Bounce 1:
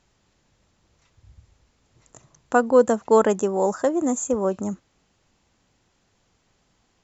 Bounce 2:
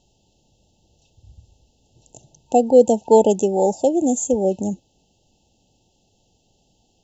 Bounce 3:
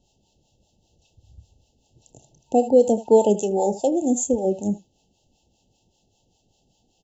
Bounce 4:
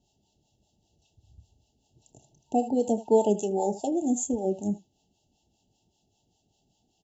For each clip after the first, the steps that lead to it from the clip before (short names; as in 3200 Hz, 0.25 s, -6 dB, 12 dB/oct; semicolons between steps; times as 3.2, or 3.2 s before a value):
FFT band-reject 910–2600 Hz; gain +4 dB
early reflections 29 ms -13 dB, 78 ms -15 dB; harmonic tremolo 5.1 Hz, depth 70%, crossover 560 Hz
notch comb 520 Hz; gain -4.5 dB